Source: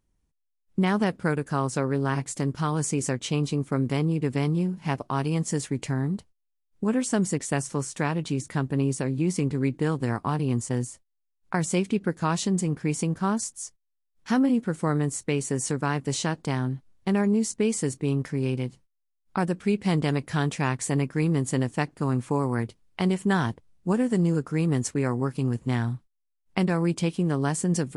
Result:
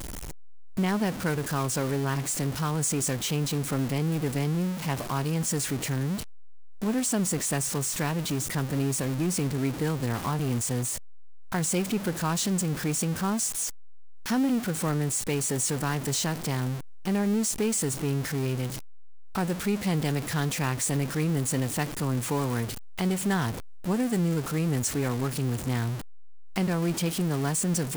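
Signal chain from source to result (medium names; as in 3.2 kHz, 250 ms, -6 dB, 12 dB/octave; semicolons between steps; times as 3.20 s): jump at every zero crossing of -25.5 dBFS; treble shelf 6.1 kHz +5.5 dB; trim -5 dB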